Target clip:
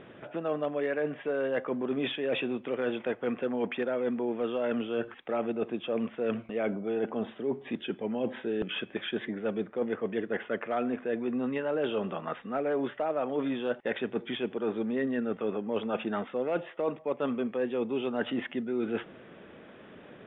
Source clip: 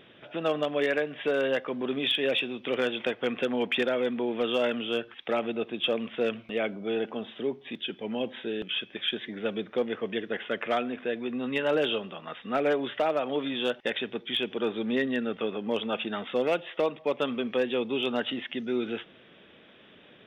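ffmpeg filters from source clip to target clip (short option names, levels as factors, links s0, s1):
-af "lowpass=1600,areverse,acompressor=threshold=0.02:ratio=6,areverse,volume=2.11"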